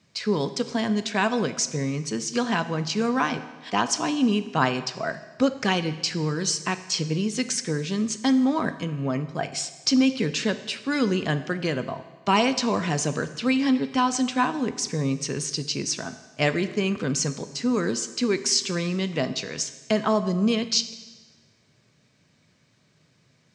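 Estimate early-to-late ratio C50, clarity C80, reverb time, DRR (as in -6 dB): 13.0 dB, 14.5 dB, 1.3 s, 11.0 dB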